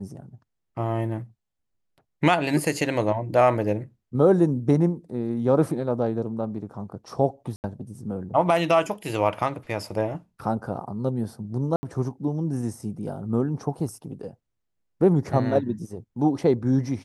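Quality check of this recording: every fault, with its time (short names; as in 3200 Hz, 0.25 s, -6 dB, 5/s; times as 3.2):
7.56–7.64 gap 79 ms
11.76–11.83 gap 70 ms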